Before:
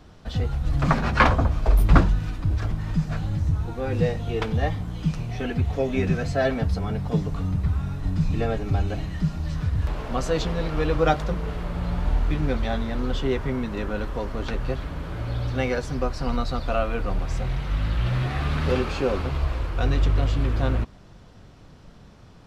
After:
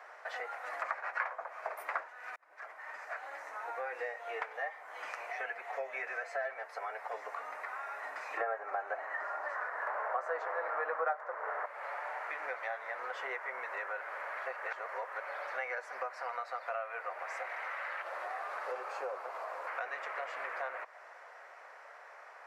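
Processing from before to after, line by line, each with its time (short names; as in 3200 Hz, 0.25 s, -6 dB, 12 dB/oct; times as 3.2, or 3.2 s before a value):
2.36–3.78 fade in
8.37–11.66 band shelf 700 Hz +14 dB 3 oct
14.01–15.2 reverse
18.02–19.67 bell 2100 Hz -12.5 dB 1.4 oct
whole clip: steep high-pass 570 Hz 36 dB/oct; resonant high shelf 2600 Hz -9.5 dB, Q 3; compressor 4:1, threshold -42 dBFS; gain +4 dB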